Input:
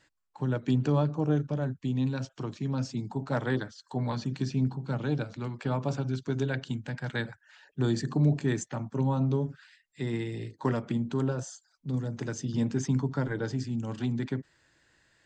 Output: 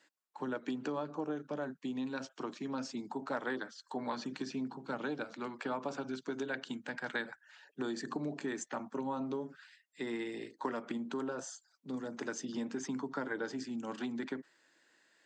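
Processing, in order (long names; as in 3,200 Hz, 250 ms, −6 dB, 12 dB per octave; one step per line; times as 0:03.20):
high-pass filter 230 Hz 24 dB per octave
downward compressor, threshold −32 dBFS, peak gain reduction 8.5 dB
dynamic equaliser 1,300 Hz, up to +5 dB, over −54 dBFS, Q 0.9
level −2.5 dB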